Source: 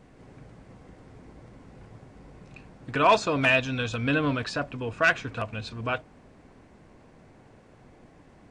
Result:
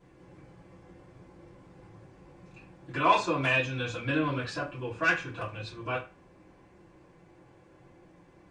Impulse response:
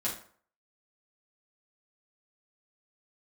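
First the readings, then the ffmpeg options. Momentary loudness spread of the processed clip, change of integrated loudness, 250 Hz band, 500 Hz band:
13 LU, -3.5 dB, -4.0 dB, -5.5 dB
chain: -filter_complex "[1:a]atrim=start_sample=2205,asetrate=70560,aresample=44100[a];[0:a][a]afir=irnorm=-1:irlink=0,volume=-4.5dB"

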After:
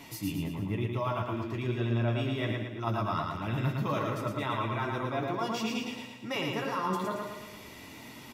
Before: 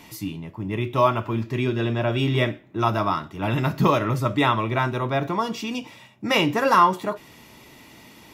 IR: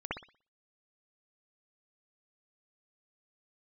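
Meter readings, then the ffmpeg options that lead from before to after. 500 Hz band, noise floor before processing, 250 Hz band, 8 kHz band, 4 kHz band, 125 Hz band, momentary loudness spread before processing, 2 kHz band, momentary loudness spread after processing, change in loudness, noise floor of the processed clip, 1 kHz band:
-9.5 dB, -49 dBFS, -8.0 dB, -5.5 dB, -9.0 dB, -6.5 dB, 12 LU, -10.0 dB, 11 LU, -9.5 dB, -48 dBFS, -11.5 dB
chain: -af "areverse,acompressor=threshold=-29dB:ratio=6,areverse,flanger=delay=6.9:depth=5.3:regen=37:speed=1.1:shape=triangular,aecho=1:1:112|224|336|448|560|672|784:0.668|0.341|0.174|0.0887|0.0452|0.0231|0.0118,volume=2dB"

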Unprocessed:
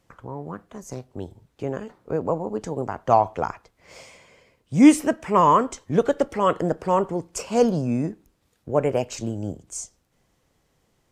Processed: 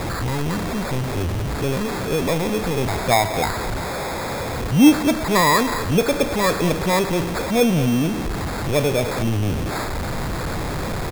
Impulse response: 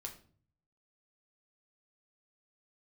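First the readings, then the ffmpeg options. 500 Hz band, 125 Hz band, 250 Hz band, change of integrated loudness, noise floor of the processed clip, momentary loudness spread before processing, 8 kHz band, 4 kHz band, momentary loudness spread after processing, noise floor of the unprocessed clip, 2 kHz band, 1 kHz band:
+2.0 dB, +8.5 dB, +3.0 dB, +1.5 dB, -26 dBFS, 20 LU, +7.0 dB, +14.5 dB, 10 LU, -69 dBFS, +12.0 dB, +0.5 dB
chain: -filter_complex "[0:a]aeval=exprs='val(0)+0.5*0.112*sgn(val(0))':c=same,lowshelf=f=210:g=6,asplit=2[a][b];[b]adelay=220,highpass=300,lowpass=3.4k,asoftclip=type=hard:threshold=-10dB,volume=-11dB[c];[a][c]amix=inputs=2:normalize=0,acrusher=samples=15:mix=1:aa=0.000001,volume=-2.5dB"

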